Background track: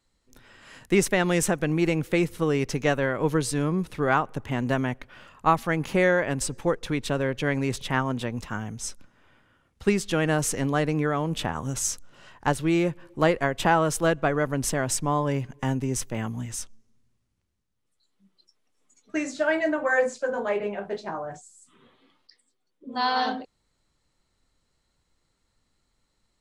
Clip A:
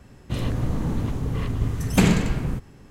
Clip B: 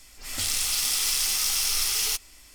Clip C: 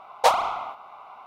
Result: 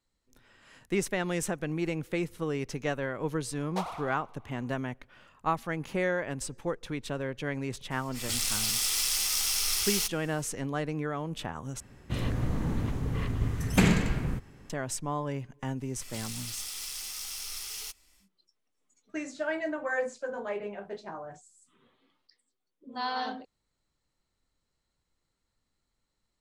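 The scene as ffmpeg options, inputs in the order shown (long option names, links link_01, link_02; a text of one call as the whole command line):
ffmpeg -i bed.wav -i cue0.wav -i cue1.wav -i cue2.wav -filter_complex "[2:a]asplit=2[link_01][link_02];[0:a]volume=-8dB[link_03];[3:a]aecho=1:1:102|204|306|408|510:0.237|0.111|0.0524|0.0246|0.0116[link_04];[1:a]equalizer=frequency=1900:width_type=o:width=1:gain=4[link_05];[link_03]asplit=2[link_06][link_07];[link_06]atrim=end=11.804[link_08];[link_05]atrim=end=2.9,asetpts=PTS-STARTPTS,volume=-5dB[link_09];[link_07]atrim=start=14.696[link_10];[link_04]atrim=end=1.26,asetpts=PTS-STARTPTS,volume=-16.5dB,afade=type=in:duration=0.004:curve=hsin,afade=type=out:start_time=1.256:duration=0.004:curve=hsin,adelay=3520[link_11];[link_01]atrim=end=2.54,asetpts=PTS-STARTPTS,volume=-3.5dB,afade=type=in:duration=0.004:curve=hsin,afade=type=out:start_time=2.536:duration=0.004:curve=hsin,adelay=7910[link_12];[link_02]atrim=end=2.54,asetpts=PTS-STARTPTS,volume=-13.5dB,afade=type=in:duration=0.1,afade=type=out:start_time=2.44:duration=0.1,adelay=15750[link_13];[link_08][link_09]acrossfade=duration=0.004:curve1=hsin:curve2=hsin[link_14];[link_14][link_10]acrossfade=duration=0.004:curve1=hsin:curve2=hsin[link_15];[link_15][link_11][link_12][link_13]amix=inputs=4:normalize=0" out.wav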